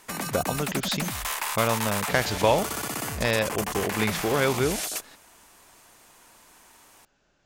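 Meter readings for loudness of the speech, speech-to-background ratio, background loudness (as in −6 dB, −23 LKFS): −27.0 LKFS, 3.0 dB, −30.0 LKFS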